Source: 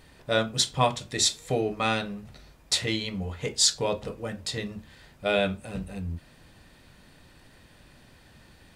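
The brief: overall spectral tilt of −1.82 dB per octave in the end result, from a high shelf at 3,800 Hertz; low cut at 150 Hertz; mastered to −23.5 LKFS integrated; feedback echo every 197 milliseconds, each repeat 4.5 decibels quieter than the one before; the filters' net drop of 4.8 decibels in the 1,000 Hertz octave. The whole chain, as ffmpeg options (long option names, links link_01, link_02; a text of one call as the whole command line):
ffmpeg -i in.wav -af "highpass=150,equalizer=frequency=1000:width_type=o:gain=-7,highshelf=frequency=3800:gain=3,aecho=1:1:197|394|591|788|985|1182|1379|1576|1773:0.596|0.357|0.214|0.129|0.0772|0.0463|0.0278|0.0167|0.01,volume=1.5dB" out.wav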